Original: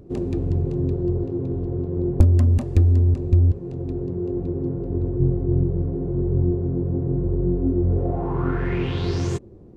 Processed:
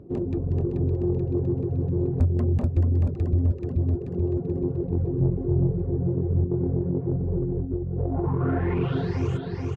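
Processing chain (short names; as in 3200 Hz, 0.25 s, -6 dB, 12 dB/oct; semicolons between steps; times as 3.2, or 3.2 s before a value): LPF 1400 Hz 6 dB/oct; feedback echo 0.433 s, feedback 60%, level -3.5 dB; reverb removal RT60 0.75 s; 6.44–9 negative-ratio compressor -23 dBFS, ratio -0.5; soft clip -13 dBFS, distortion -16 dB; HPF 55 Hz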